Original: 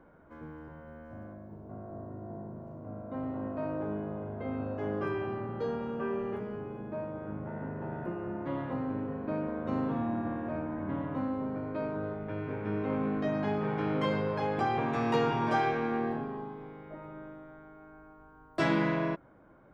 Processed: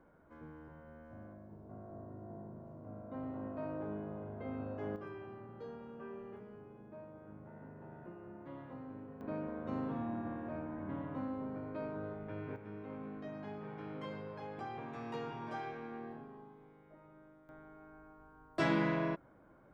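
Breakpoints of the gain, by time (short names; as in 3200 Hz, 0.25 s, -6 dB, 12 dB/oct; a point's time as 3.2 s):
-6.5 dB
from 4.96 s -14 dB
from 9.21 s -7 dB
from 12.56 s -14.5 dB
from 17.49 s -4 dB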